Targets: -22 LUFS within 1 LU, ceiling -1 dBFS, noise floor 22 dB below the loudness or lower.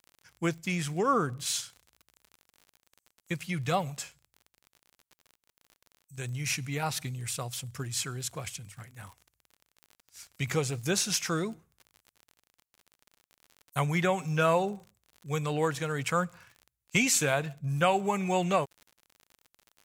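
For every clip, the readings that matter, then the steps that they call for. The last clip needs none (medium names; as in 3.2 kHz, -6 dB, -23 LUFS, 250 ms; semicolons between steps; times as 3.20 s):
tick rate 45 per s; loudness -30.0 LUFS; peak level -11.5 dBFS; loudness target -22.0 LUFS
-> de-click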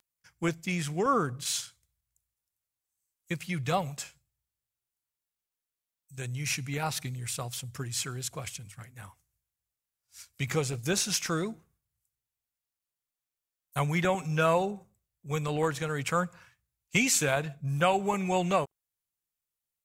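tick rate 0.30 per s; loudness -30.0 LUFS; peak level -11.5 dBFS; loudness target -22.0 LUFS
-> trim +8 dB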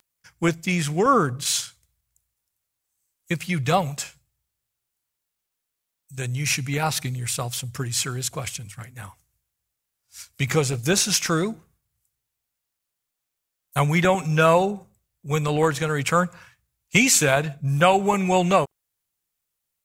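loudness -22.0 LUFS; peak level -3.5 dBFS; noise floor -82 dBFS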